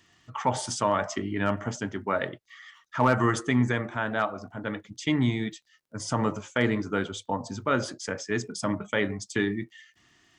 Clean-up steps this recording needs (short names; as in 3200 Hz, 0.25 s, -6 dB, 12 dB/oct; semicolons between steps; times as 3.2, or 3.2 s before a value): clip repair -12 dBFS; de-click